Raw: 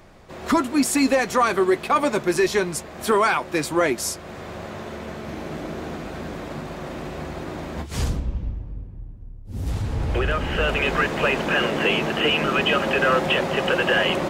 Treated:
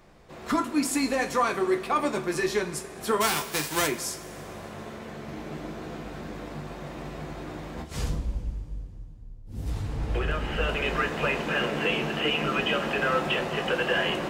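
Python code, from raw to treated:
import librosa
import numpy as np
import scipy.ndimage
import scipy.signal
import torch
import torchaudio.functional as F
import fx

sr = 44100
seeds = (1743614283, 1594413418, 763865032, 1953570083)

y = fx.envelope_flatten(x, sr, power=0.3, at=(3.2, 3.86), fade=0.02)
y = fx.rev_double_slope(y, sr, seeds[0], early_s=0.23, late_s=2.5, knee_db=-18, drr_db=4.5)
y = y * librosa.db_to_amplitude(-7.0)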